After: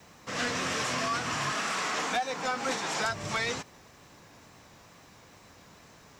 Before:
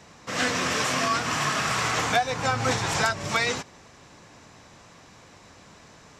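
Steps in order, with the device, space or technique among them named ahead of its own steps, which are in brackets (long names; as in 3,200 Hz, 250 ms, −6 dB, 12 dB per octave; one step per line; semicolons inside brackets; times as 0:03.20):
0:01.52–0:03.05: Butterworth high-pass 180 Hz 36 dB per octave
compact cassette (soft clipping −18.5 dBFS, distortion −17 dB; low-pass filter 11,000 Hz 12 dB per octave; tape wow and flutter; white noise bed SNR 36 dB)
level −4 dB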